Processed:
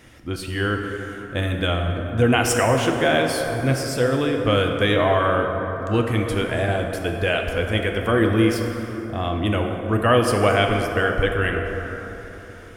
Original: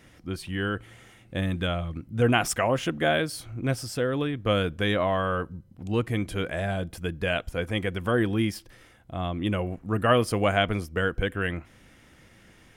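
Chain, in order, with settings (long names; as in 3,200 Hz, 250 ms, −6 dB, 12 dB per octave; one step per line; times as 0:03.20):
parametric band 180 Hz −9.5 dB 0.27 octaves
in parallel at −1 dB: brickwall limiter −17.5 dBFS, peak gain reduction 10 dB
on the sum: dense smooth reverb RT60 4 s, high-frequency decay 0.4×, DRR 2.5 dB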